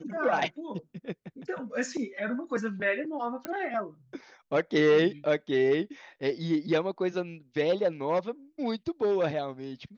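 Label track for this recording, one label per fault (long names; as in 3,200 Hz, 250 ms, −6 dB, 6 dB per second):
3.450000	3.450000	click −18 dBFS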